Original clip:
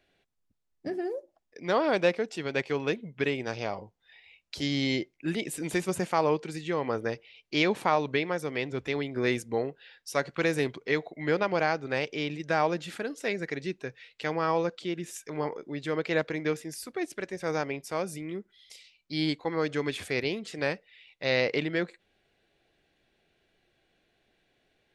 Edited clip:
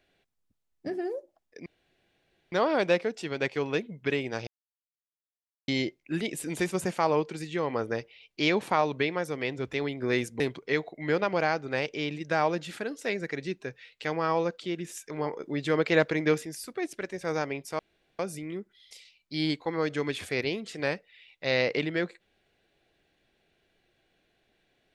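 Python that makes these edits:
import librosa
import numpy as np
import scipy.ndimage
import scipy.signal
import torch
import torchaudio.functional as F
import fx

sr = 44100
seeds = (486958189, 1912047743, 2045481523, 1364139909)

y = fx.edit(x, sr, fx.insert_room_tone(at_s=1.66, length_s=0.86),
    fx.silence(start_s=3.61, length_s=1.21),
    fx.cut(start_s=9.54, length_s=1.05),
    fx.clip_gain(start_s=15.59, length_s=1.06, db=4.5),
    fx.insert_room_tone(at_s=17.98, length_s=0.4), tone=tone)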